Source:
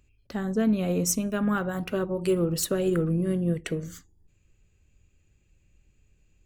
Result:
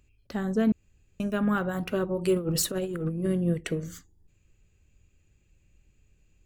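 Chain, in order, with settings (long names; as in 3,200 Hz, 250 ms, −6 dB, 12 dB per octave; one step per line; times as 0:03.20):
0:00.72–0:01.20: fill with room tone
0:02.36–0:03.27: compressor whose output falls as the input rises −28 dBFS, ratio −0.5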